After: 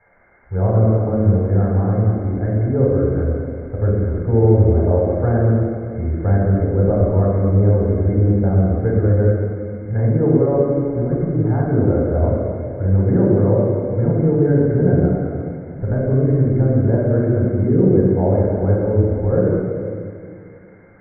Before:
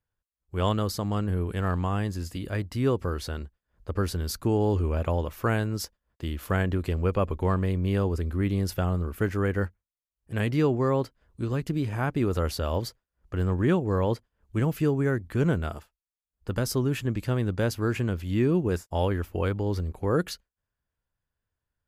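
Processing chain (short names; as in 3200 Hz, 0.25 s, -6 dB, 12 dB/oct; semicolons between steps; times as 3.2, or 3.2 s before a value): G.711 law mismatch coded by mu; treble ducked by the level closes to 1400 Hz, closed at -23.5 dBFS; tilt shelf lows +9 dB, about 770 Hz; requantised 8-bit, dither triangular; rippled Chebyshev low-pass 2100 Hz, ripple 9 dB; reverb RT60 2.4 s, pre-delay 4 ms, DRR -3.5 dB; speed mistake 24 fps film run at 25 fps; gain -1 dB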